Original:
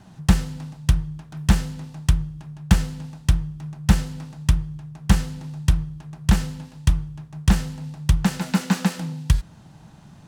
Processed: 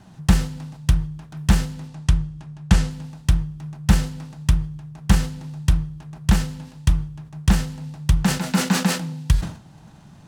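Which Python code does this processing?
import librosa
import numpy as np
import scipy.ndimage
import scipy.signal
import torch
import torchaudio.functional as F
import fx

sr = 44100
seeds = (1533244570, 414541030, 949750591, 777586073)

y = fx.lowpass(x, sr, hz=10000.0, slope=12, at=(1.88, 2.91))
y = fx.sustainer(y, sr, db_per_s=120.0)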